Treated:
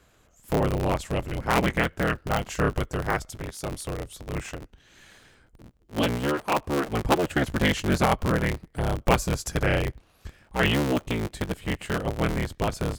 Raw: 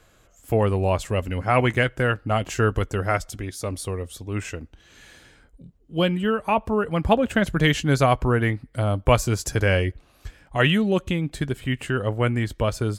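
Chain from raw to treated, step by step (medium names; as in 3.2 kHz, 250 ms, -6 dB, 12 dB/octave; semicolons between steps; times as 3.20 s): cycle switcher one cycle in 3, inverted; trim -3.5 dB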